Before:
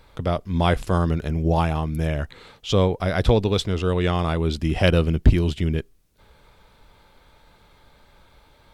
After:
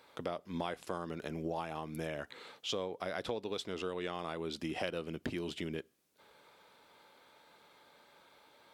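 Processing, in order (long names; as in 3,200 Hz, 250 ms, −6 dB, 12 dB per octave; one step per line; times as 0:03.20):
high-pass filter 290 Hz 12 dB per octave
downward compressor 5 to 1, threshold −30 dBFS, peak gain reduction 14 dB
on a send: convolution reverb RT60 0.55 s, pre-delay 3 ms, DRR 24 dB
on the sum: level −5 dB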